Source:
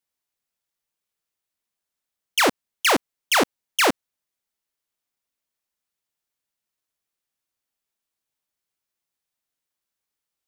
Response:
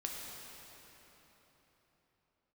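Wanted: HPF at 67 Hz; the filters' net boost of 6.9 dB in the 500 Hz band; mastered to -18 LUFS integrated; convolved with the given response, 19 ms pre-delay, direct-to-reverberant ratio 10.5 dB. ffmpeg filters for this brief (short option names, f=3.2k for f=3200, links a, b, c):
-filter_complex "[0:a]highpass=67,equalizer=f=500:t=o:g=8.5,asplit=2[a][b];[1:a]atrim=start_sample=2205,adelay=19[c];[b][c]afir=irnorm=-1:irlink=0,volume=-11.5dB[d];[a][d]amix=inputs=2:normalize=0,volume=1dB"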